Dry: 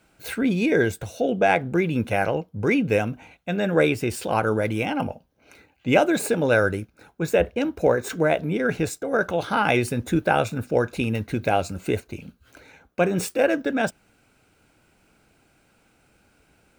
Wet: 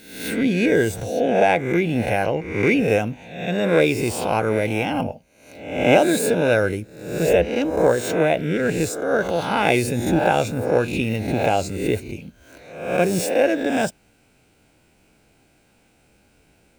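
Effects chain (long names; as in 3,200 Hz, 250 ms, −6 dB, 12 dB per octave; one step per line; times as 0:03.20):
peak hold with a rise ahead of every peak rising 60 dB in 0.73 s
parametric band 1,300 Hz −7 dB 0.61 octaves
level +1 dB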